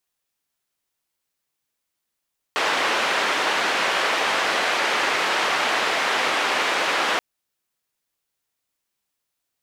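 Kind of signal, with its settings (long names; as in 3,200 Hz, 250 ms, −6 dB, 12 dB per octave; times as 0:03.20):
band-limited noise 420–2,300 Hz, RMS −22 dBFS 4.63 s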